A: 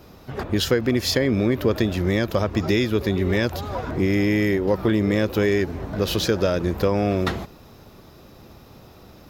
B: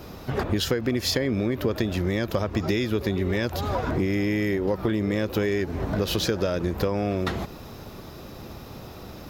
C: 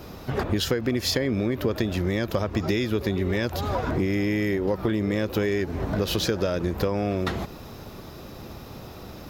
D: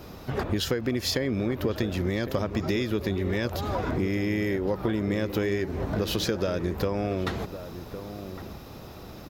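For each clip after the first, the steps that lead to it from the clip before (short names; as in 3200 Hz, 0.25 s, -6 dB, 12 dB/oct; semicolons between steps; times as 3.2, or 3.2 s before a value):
compressor 4:1, threshold -29 dBFS, peak gain reduction 12.5 dB; gain +6 dB
nothing audible
outdoor echo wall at 190 m, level -11 dB; gain -2.5 dB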